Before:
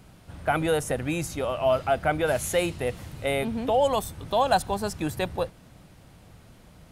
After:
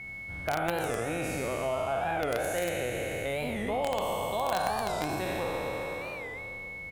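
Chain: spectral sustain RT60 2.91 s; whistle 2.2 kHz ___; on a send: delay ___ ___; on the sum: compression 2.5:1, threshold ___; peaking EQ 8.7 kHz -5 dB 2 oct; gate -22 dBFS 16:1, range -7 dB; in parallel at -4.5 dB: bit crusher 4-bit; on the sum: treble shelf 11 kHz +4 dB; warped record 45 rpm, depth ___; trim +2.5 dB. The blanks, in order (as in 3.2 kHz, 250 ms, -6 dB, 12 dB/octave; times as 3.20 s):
-34 dBFS, 74 ms, -10 dB, -26 dBFS, 160 cents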